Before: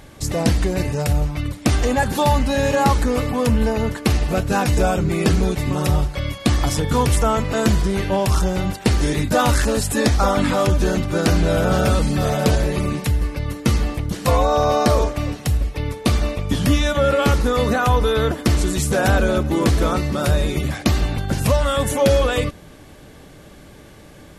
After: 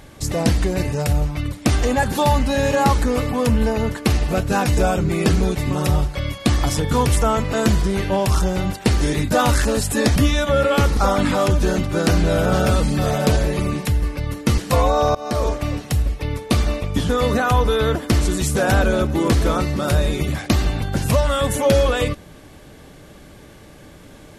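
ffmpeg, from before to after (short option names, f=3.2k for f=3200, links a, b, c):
-filter_complex "[0:a]asplit=6[a][b][c][d][e][f];[a]atrim=end=10.162[g];[b]atrim=start=16.638:end=17.452[h];[c]atrim=start=10.158:end=13.772[i];[d]atrim=start=14.128:end=14.7,asetpts=PTS-STARTPTS,afade=t=out:st=0.568:d=0.004:c=hsin:silence=0.0707946[j];[e]atrim=start=14.7:end=16.642,asetpts=PTS-STARTPTS,afade=t=in:d=0.41:silence=0.0707946[k];[f]atrim=start=17.448[l];[g][h]acrossfade=d=0.004:c1=hsin:c2=hsin[m];[m][i]acrossfade=d=0.004:c1=hsin:c2=hsin[n];[j][k]concat=n=2:v=0:a=1[o];[n][o]acrossfade=d=0.004:c1=hsin:c2=hsin[p];[p][l]acrossfade=d=0.004:c1=hsin:c2=hsin"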